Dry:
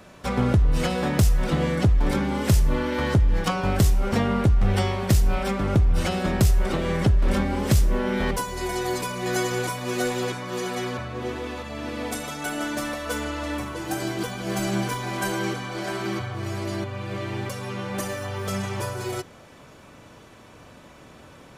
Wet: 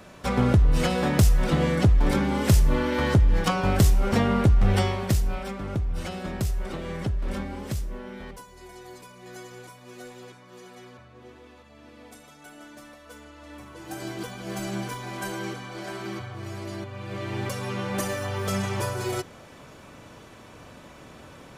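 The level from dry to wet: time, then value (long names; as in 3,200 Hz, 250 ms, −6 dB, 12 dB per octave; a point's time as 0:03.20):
0:04.77 +0.5 dB
0:05.52 −8.5 dB
0:07.40 −8.5 dB
0:08.48 −17.5 dB
0:13.34 −17.5 dB
0:14.08 −6 dB
0:16.89 −6 dB
0:17.51 +1 dB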